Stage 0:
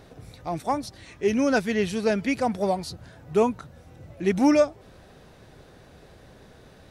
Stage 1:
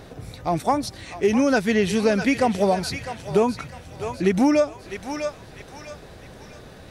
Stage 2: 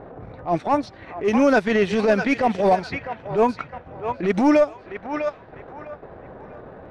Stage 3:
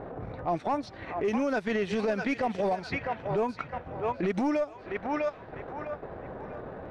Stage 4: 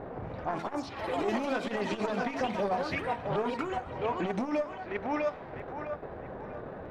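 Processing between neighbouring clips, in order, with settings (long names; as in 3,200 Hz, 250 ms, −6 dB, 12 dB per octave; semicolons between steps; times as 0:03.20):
feedback echo with a high-pass in the loop 652 ms, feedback 45%, high-pass 1,000 Hz, level −9.5 dB; downward compressor 6 to 1, threshold −22 dBFS, peak gain reduction 8 dB; level +7 dB
mid-hump overdrive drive 13 dB, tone 1,300 Hz, clips at −8 dBFS; low-pass that shuts in the quiet parts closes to 970 Hz, open at −14.5 dBFS; transient designer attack −11 dB, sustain −7 dB; level +3.5 dB
downward compressor 6 to 1, threshold −26 dBFS, peak gain reduction 12.5 dB
hum removal 55.53 Hz, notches 29; delay with pitch and tempo change per echo 117 ms, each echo +4 semitones, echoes 3, each echo −6 dB; saturating transformer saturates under 480 Hz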